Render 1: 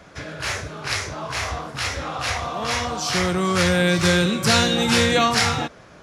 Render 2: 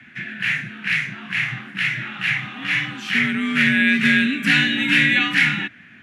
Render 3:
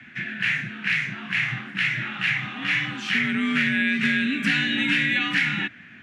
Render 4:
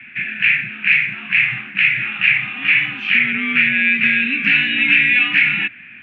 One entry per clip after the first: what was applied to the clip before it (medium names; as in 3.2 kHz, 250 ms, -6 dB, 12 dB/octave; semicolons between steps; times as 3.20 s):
FFT filter 100 Hz 0 dB, 200 Hz +3 dB, 470 Hz -21 dB, 740 Hz -14 dB, 1.1 kHz -11 dB, 1.7 kHz +11 dB, 2.7 kHz +9 dB, 5 kHz -15 dB, 8.8 kHz -11 dB, 13 kHz -8 dB; frequency shift +56 Hz; trim -1.5 dB
low-pass 8.5 kHz 12 dB/octave; compression 5:1, threshold -19 dBFS, peak gain reduction 7.5 dB
resonant low-pass 2.5 kHz, resonance Q 6.7; trim -2 dB